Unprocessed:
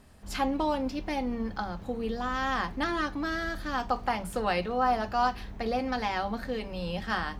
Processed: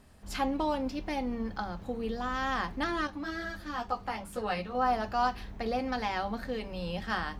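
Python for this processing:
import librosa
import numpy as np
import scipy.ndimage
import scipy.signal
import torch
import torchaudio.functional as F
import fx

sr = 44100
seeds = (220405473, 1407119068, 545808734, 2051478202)

y = fx.ensemble(x, sr, at=(3.07, 4.75))
y = y * librosa.db_to_amplitude(-2.0)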